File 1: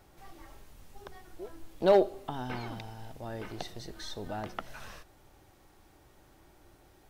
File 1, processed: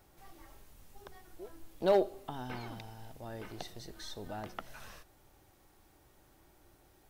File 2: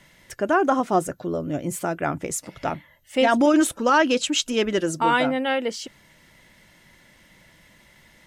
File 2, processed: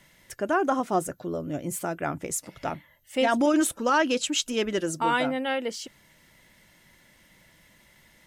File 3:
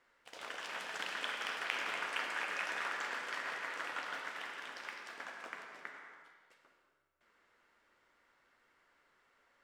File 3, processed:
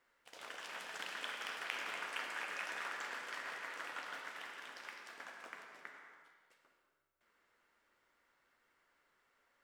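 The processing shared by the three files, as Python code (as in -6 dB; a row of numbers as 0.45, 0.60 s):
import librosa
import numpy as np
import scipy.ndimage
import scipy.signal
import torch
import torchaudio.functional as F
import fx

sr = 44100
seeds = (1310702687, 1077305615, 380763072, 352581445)

y = fx.high_shelf(x, sr, hz=9300.0, db=7.5)
y = y * librosa.db_to_amplitude(-4.5)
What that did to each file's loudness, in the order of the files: -4.5, -4.0, -4.0 LU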